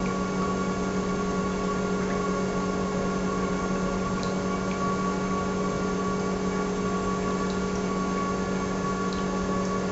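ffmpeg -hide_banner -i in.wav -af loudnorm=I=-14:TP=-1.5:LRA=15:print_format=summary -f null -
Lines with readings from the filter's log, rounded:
Input Integrated:    -27.7 LUFS
Input True Peak:     -13.5 dBTP
Input LRA:             0.2 LU
Input Threshold:     -37.7 LUFS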